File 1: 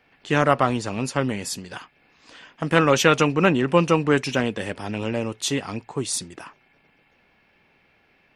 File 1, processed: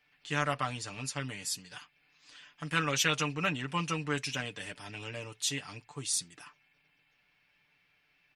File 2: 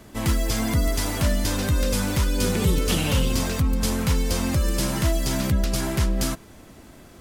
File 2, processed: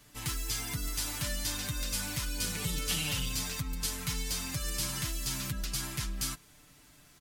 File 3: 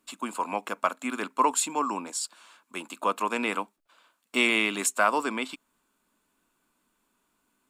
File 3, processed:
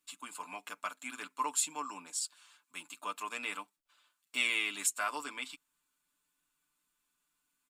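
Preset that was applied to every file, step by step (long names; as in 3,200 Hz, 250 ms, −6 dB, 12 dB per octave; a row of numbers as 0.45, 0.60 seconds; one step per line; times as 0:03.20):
guitar amp tone stack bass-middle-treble 5-5-5
comb filter 6.8 ms, depth 71%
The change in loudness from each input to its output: −11.0, −10.0, −8.5 LU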